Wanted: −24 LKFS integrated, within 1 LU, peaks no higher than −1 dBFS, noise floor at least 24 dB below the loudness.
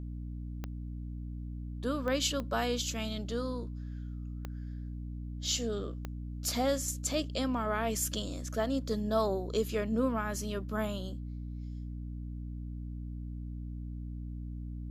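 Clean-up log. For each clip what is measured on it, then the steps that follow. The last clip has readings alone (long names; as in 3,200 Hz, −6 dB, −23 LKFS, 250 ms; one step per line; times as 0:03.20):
number of clicks 5; mains hum 60 Hz; hum harmonics up to 300 Hz; level of the hum −37 dBFS; integrated loudness −35.5 LKFS; sample peak −17.0 dBFS; target loudness −24.0 LKFS
→ click removal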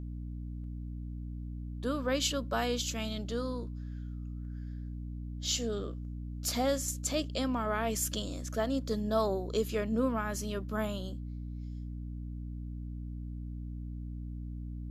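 number of clicks 0; mains hum 60 Hz; hum harmonics up to 300 Hz; level of the hum −37 dBFS
→ hum removal 60 Hz, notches 5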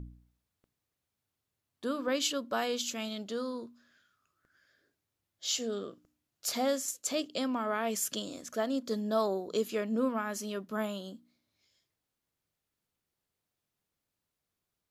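mains hum none found; integrated loudness −33.5 LKFS; sample peak −17.5 dBFS; target loudness −24.0 LKFS
→ level +9.5 dB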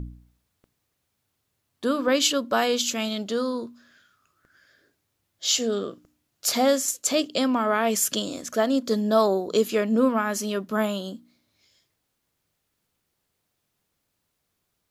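integrated loudness −24.0 LKFS; sample peak −8.0 dBFS; background noise floor −77 dBFS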